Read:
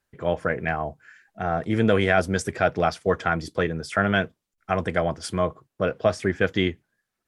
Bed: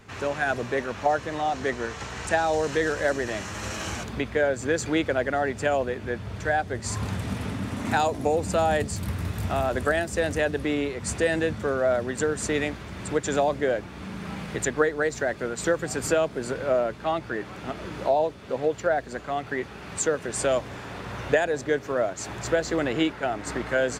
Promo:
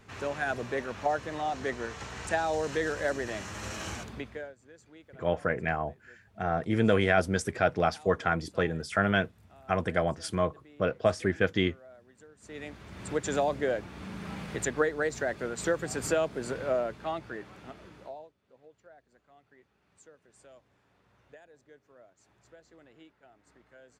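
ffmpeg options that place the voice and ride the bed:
-filter_complex "[0:a]adelay=5000,volume=-4dB[a];[1:a]volume=19.5dB,afade=t=out:st=3.91:d=0.64:silence=0.0630957,afade=t=in:st=12.4:d=0.83:silence=0.0562341,afade=t=out:st=16.57:d=1.75:silence=0.0446684[b];[a][b]amix=inputs=2:normalize=0"

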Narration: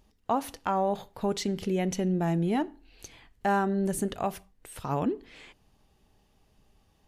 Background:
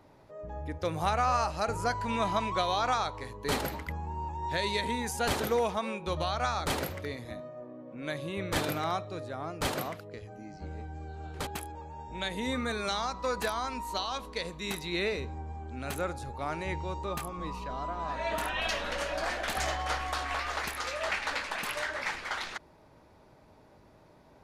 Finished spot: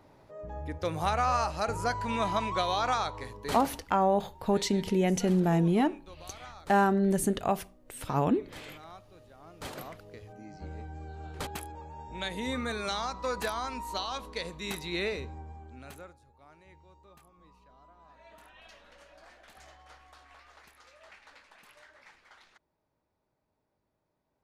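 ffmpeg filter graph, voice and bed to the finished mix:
-filter_complex "[0:a]adelay=3250,volume=2dB[a];[1:a]volume=16dB,afade=t=out:st=3.22:d=0.66:silence=0.141254,afade=t=in:st=9.37:d=1.23:silence=0.158489,afade=t=out:st=15.04:d=1.14:silence=0.0841395[b];[a][b]amix=inputs=2:normalize=0"

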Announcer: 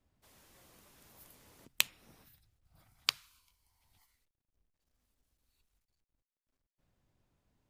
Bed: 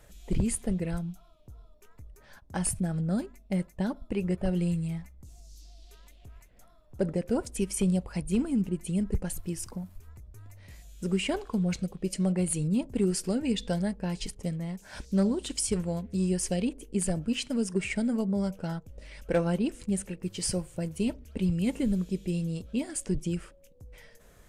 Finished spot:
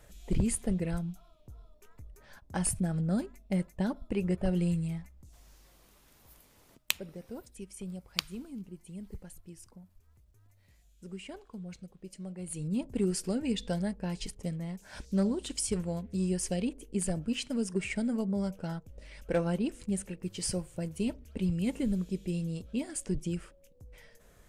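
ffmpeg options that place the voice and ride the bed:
-filter_complex "[0:a]adelay=5100,volume=-1dB[a];[1:a]volume=11dB,afade=t=out:st=4.79:d=0.93:silence=0.199526,afade=t=in:st=12.38:d=0.49:silence=0.251189[b];[a][b]amix=inputs=2:normalize=0"

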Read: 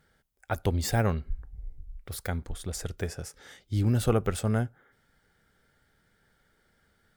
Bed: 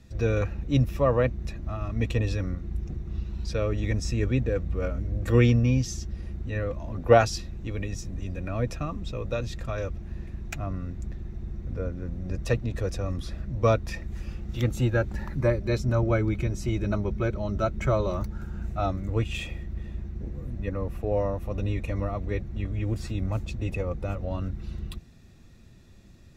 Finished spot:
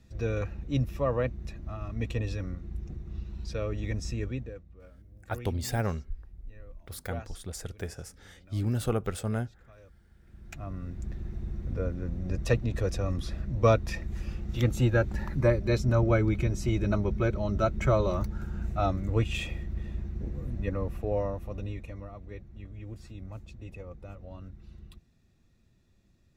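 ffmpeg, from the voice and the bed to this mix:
-filter_complex "[0:a]adelay=4800,volume=-4dB[a];[1:a]volume=18dB,afade=t=out:st=4.11:d=0.53:silence=0.125893,afade=t=in:st=10.21:d=1.06:silence=0.0668344,afade=t=out:st=20.59:d=1.43:silence=0.211349[b];[a][b]amix=inputs=2:normalize=0"

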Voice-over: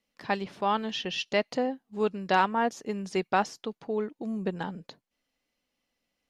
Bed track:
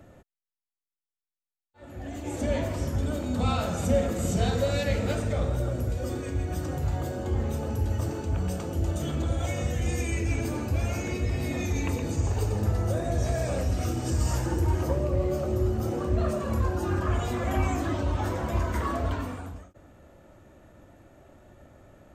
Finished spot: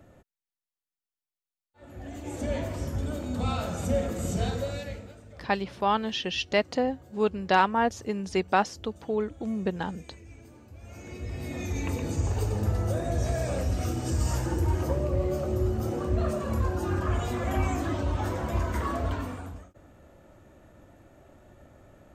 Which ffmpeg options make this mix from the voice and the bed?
-filter_complex "[0:a]adelay=5200,volume=2dB[a];[1:a]volume=17dB,afade=t=out:st=4.42:d=0.7:silence=0.125893,afade=t=in:st=10.8:d=1.25:silence=0.1[b];[a][b]amix=inputs=2:normalize=0"

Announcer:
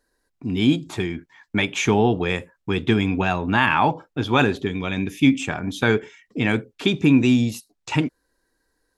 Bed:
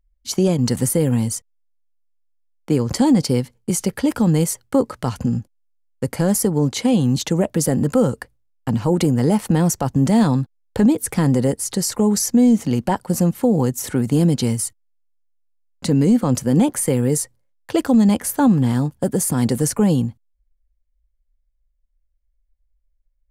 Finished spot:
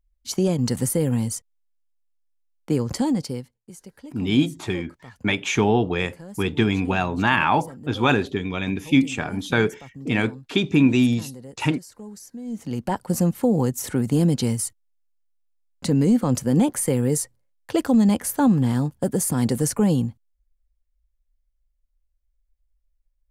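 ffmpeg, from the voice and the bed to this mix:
-filter_complex "[0:a]adelay=3700,volume=-1dB[a];[1:a]volume=15.5dB,afade=t=out:st=2.79:d=0.83:silence=0.11885,afade=t=in:st=12.44:d=0.63:silence=0.105925[b];[a][b]amix=inputs=2:normalize=0"

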